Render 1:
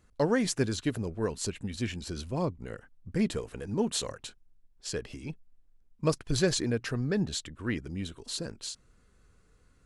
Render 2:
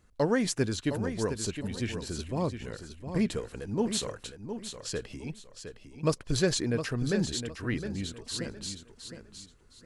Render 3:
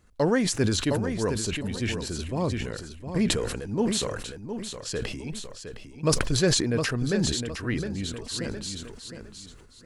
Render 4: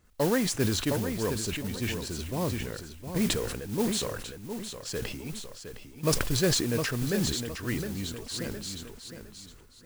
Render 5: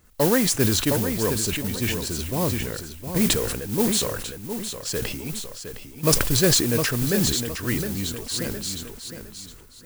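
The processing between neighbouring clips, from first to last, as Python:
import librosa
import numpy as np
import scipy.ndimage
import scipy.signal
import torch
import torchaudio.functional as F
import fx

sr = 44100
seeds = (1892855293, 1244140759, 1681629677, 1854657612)

y1 = fx.echo_feedback(x, sr, ms=712, feedback_pct=27, wet_db=-9.0)
y2 = fx.sustainer(y1, sr, db_per_s=39.0)
y2 = y2 * 10.0 ** (2.5 / 20.0)
y3 = fx.mod_noise(y2, sr, seeds[0], snr_db=13)
y3 = y3 * 10.0 ** (-3.0 / 20.0)
y4 = fx.high_shelf(y3, sr, hz=8800.0, db=8.5)
y4 = y4 * 10.0 ** (5.5 / 20.0)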